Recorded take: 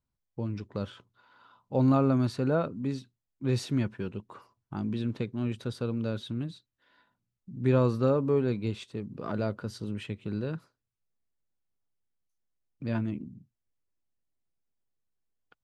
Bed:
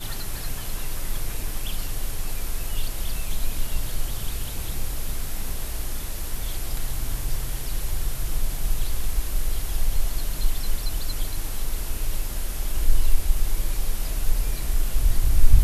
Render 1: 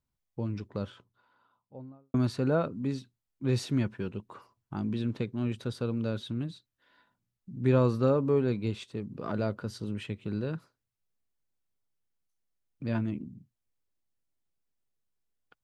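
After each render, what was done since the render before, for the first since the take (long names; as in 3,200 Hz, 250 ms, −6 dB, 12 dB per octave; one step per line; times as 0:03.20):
0:00.51–0:02.14: fade out and dull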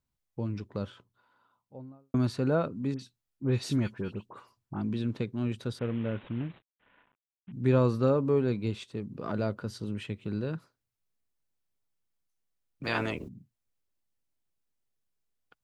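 0:02.94–0:04.82: all-pass dispersion highs, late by 58 ms, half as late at 2,300 Hz
0:05.79–0:07.52: variable-slope delta modulation 16 kbit/s
0:12.83–0:13.27: ceiling on every frequency bin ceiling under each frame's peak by 26 dB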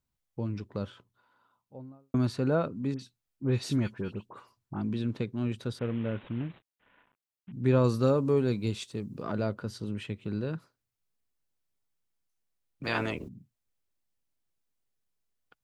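0:07.84–0:09.23: bass and treble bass +1 dB, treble +10 dB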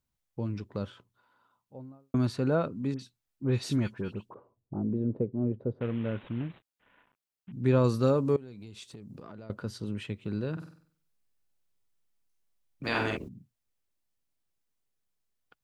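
0:04.34–0:05.81: low-pass with resonance 530 Hz, resonance Q 1.9
0:08.36–0:09.50: downward compressor 12 to 1, threshold −41 dBFS
0:10.52–0:13.17: flutter between parallel walls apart 8.1 metres, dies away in 0.53 s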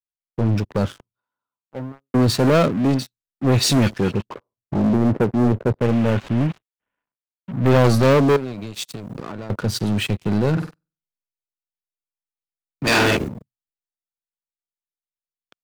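leveller curve on the samples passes 5
multiband upward and downward expander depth 40%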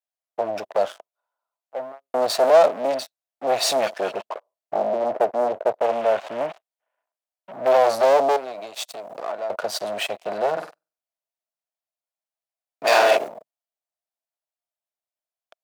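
tube saturation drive 15 dB, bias 0.4
high-pass with resonance 650 Hz, resonance Q 5.8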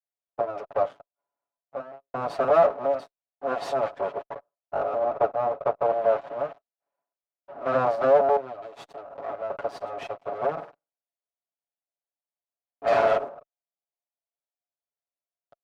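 lower of the sound and its delayed copy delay 7.1 ms
resonant band-pass 580 Hz, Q 1.1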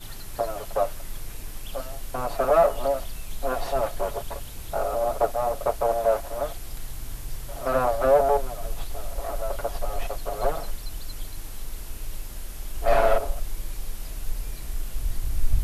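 mix in bed −7.5 dB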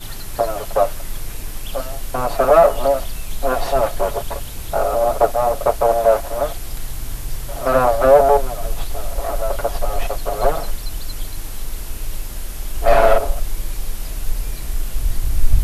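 level +8 dB
brickwall limiter −1 dBFS, peak gain reduction 1.5 dB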